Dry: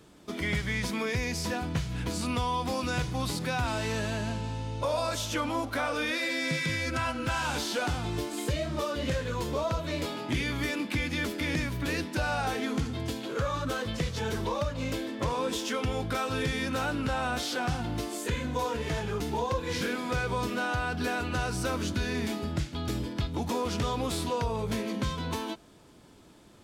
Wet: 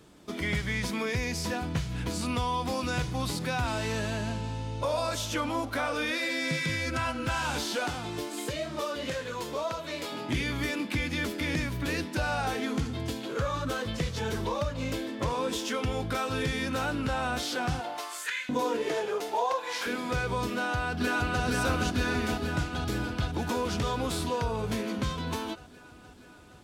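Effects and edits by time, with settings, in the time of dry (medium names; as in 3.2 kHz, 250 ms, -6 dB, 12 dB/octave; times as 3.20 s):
7.75–10.11 s: high-pass 190 Hz -> 530 Hz 6 dB/octave
17.79–19.85 s: LFO high-pass saw up 1.2 Hz -> 0.25 Hz 210–2300 Hz
20.53–21.43 s: echo throw 470 ms, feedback 75%, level -2 dB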